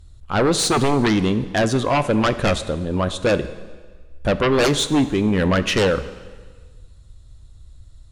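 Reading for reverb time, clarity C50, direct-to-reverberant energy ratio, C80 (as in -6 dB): 1.5 s, 13.5 dB, 12.0 dB, 15.0 dB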